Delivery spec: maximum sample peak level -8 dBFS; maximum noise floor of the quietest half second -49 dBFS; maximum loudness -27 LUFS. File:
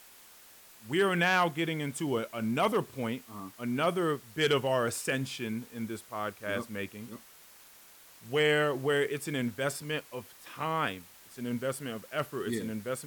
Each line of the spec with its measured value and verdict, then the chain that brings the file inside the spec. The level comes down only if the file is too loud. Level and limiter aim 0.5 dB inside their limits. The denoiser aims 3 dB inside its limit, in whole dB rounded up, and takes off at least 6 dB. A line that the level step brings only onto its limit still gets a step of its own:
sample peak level -14.0 dBFS: OK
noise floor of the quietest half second -55 dBFS: OK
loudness -31.5 LUFS: OK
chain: none

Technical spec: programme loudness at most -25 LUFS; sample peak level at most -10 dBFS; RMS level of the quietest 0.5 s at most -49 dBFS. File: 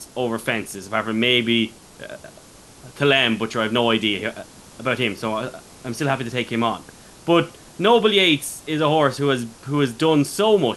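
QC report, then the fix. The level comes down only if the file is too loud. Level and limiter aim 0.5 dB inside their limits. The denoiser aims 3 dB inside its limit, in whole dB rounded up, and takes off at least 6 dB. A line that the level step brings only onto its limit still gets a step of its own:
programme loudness -20.0 LUFS: fail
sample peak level -4.5 dBFS: fail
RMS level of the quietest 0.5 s -46 dBFS: fail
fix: gain -5.5 dB; limiter -10.5 dBFS

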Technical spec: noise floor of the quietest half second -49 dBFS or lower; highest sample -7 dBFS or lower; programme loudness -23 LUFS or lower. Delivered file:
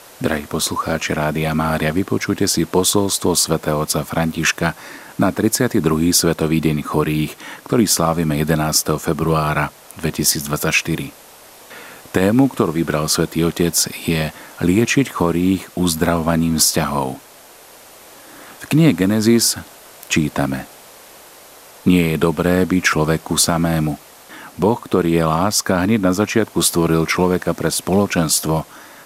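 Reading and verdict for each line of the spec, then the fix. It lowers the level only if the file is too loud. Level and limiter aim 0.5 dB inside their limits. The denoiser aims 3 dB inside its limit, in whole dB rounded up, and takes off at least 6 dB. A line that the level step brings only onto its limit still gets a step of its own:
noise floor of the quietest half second -43 dBFS: fail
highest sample -2.0 dBFS: fail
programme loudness -17.5 LUFS: fail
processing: denoiser 6 dB, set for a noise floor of -43 dBFS; gain -6 dB

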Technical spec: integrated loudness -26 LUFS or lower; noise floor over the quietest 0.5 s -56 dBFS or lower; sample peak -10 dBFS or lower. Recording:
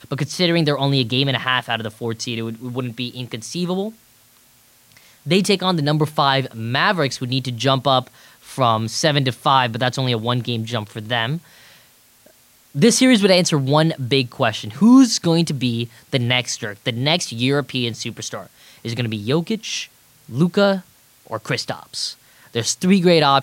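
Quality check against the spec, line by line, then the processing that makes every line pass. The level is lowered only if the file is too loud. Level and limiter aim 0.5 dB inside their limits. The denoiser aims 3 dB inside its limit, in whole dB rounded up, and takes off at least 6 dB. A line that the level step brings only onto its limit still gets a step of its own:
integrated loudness -19.0 LUFS: fail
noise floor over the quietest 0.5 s -53 dBFS: fail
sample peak -3.0 dBFS: fail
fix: gain -7.5 dB

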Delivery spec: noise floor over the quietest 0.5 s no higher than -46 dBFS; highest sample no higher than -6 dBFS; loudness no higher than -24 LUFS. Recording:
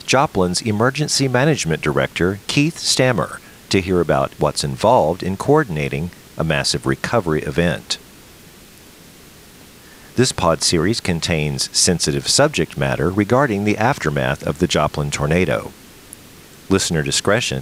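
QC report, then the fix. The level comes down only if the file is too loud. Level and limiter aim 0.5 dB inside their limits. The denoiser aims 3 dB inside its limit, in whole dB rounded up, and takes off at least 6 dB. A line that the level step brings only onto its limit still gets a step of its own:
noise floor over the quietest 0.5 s -43 dBFS: fail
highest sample -1.5 dBFS: fail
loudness -18.0 LUFS: fail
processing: gain -6.5 dB

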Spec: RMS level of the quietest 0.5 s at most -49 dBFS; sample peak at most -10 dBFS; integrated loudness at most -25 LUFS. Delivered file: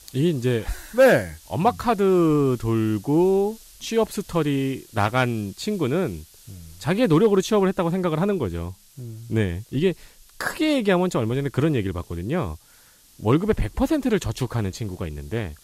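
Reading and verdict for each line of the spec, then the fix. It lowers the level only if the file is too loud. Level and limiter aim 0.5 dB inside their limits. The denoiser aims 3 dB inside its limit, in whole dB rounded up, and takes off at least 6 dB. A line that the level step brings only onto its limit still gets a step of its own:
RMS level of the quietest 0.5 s -53 dBFS: OK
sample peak -7.5 dBFS: fail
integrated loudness -23.0 LUFS: fail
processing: gain -2.5 dB; limiter -10.5 dBFS

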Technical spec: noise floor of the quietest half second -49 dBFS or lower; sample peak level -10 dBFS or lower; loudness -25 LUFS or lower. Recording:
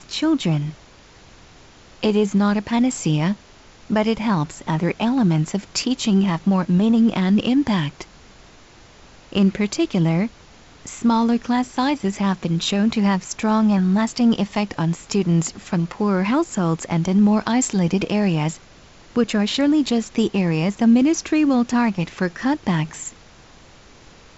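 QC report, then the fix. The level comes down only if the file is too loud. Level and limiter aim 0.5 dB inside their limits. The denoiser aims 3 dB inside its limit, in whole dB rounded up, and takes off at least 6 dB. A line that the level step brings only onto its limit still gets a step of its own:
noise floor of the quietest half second -47 dBFS: fail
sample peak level -7.0 dBFS: fail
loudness -20.0 LUFS: fail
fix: gain -5.5 dB

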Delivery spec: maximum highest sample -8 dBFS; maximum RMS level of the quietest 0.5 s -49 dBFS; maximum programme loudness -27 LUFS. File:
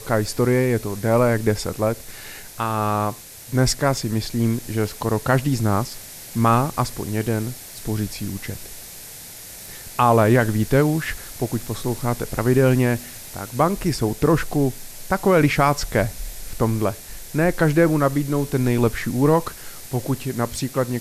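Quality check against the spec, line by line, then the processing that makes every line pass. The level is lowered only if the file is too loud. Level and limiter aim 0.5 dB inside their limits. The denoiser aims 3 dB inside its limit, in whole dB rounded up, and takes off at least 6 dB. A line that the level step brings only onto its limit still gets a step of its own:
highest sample -5.5 dBFS: fail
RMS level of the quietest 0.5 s -39 dBFS: fail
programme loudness -21.5 LUFS: fail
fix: denoiser 7 dB, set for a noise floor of -39 dBFS; gain -6 dB

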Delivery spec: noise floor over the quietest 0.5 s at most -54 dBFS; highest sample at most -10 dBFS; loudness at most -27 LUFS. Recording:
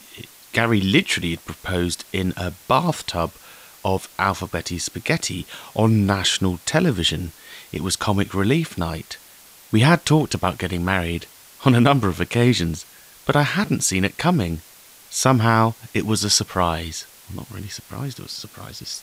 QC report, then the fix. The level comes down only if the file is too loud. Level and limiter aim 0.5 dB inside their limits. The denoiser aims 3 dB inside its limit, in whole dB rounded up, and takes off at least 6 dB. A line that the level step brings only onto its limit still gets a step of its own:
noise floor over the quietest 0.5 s -47 dBFS: fail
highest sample -3.0 dBFS: fail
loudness -21.0 LUFS: fail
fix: denoiser 6 dB, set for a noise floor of -47 dBFS; gain -6.5 dB; limiter -10.5 dBFS

